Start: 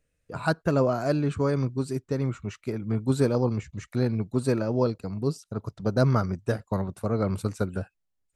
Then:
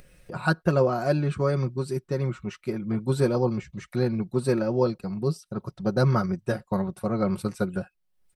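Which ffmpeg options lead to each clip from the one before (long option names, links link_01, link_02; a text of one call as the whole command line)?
ffmpeg -i in.wav -af "equalizer=frequency=6900:width_type=o:width=0.22:gain=-9,aecho=1:1:5.5:0.61,acompressor=mode=upward:threshold=-37dB:ratio=2.5" out.wav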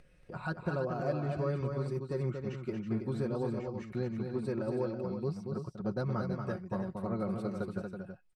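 ffmpeg -i in.wav -filter_complex "[0:a]aemphasis=mode=reproduction:type=50fm,alimiter=limit=-16dB:level=0:latency=1:release=304,asplit=2[link_01][link_02];[link_02]aecho=0:1:232|326:0.531|0.398[link_03];[link_01][link_03]amix=inputs=2:normalize=0,volume=-8dB" out.wav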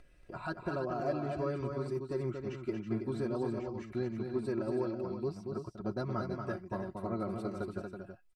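ffmpeg -i in.wav -af "aecho=1:1:3:0.54,volume=-1dB" out.wav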